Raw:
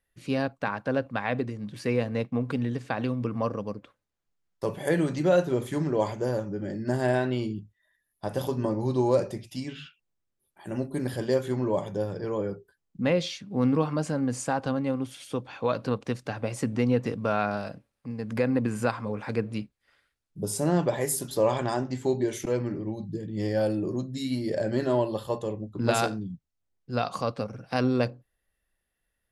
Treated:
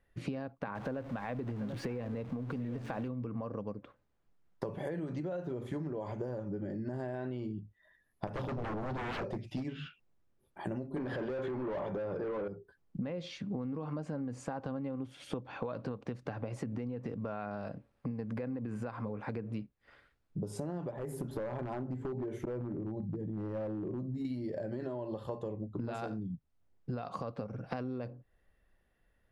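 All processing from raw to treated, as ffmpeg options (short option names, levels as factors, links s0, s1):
-filter_complex "[0:a]asettb=1/sr,asplit=3[s0][s1][s2];[s0]atrim=end=0.754[s3];[s1]atrim=start=0.75:end=3.08,asetpts=PTS-STARTPTS,afade=t=in:d=0.004:c=qsin,afade=t=out:st=2.326:d=0.004:c=qsin,aeval=exprs='val(0)+0.5*0.0158*sgn(val(0))':c=same,aecho=1:1:737:0.168,atrim=end_sample=102753[s4];[s2]atrim=start=3.076[s5];[s3][s4]acrossfade=d=0.004:c1=hsin:c2=qsin[s6];[s6][s5]acrossfade=d=0.004:c1=qsin:c2=hsin,asettb=1/sr,asplit=3[s7][s8][s9];[s7]atrim=end=8.274[s10];[s8]atrim=start=8.27:end=9.65,asetpts=PTS-STARTPTS,afade=t=in:d=0.004:c=qsin,afade=t=out:st=1.376:d=0.004:c=qsin,acrossover=split=5300[s11][s12];[s12]acompressor=threshold=0.00112:ratio=4:attack=1:release=60[s13];[s11][s13]amix=inputs=2:normalize=0,aeval=exprs='0.0355*(abs(mod(val(0)/0.0355+3,4)-2)-1)':c=same[s14];[s9]atrim=start=9.646[s15];[s10][s14]acrossfade=d=0.004:c1=hsin:c2=qsin[s16];[s16][s15]acrossfade=d=0.004:c1=qsin:c2=hsin,asettb=1/sr,asplit=3[s17][s18][s19];[s17]atrim=end=10.964[s20];[s18]atrim=start=10.96:end=12.48,asetpts=PTS-STARTPTS,afade=t=in:d=0.004:c=qsin,afade=t=out:st=1.516:d=0.004:c=qsin,aemphasis=mode=reproduction:type=75kf,asplit=2[s21][s22];[s22]highpass=f=720:p=1,volume=20,asoftclip=type=tanh:threshold=0.211[s23];[s21][s23]amix=inputs=2:normalize=0,lowpass=f=4100:p=1,volume=0.501[s24];[s19]atrim=start=12.476[s25];[s20][s24]acrossfade=d=0.004:c1=hsin:c2=qsin[s26];[s26][s25]acrossfade=d=0.004:c1=qsin:c2=hsin,asettb=1/sr,asplit=3[s27][s28][s29];[s27]atrim=end=20.914[s30];[s28]atrim=start=20.91:end=24.25,asetpts=PTS-STARTPTS,afade=t=in:d=0.004:c=qsin,afade=t=out:st=3.336:d=0.004:c=qsin,equalizer=f=4900:w=0.46:g=-14.5,acompressor=threshold=0.0224:ratio=3:attack=3.2:release=140:knee=1:detection=peak,aeval=exprs='0.0335*(abs(mod(val(0)/0.0335+3,4)-2)-1)':c=same[s31];[s29]atrim=start=24.246[s32];[s30][s31]acrossfade=d=0.004:c1=hsin:c2=qsin[s33];[s33][s32]acrossfade=d=0.004:c1=qsin:c2=hsin,lowpass=f=1200:p=1,alimiter=limit=0.0794:level=0:latency=1:release=82,acompressor=threshold=0.00631:ratio=16,volume=2.99"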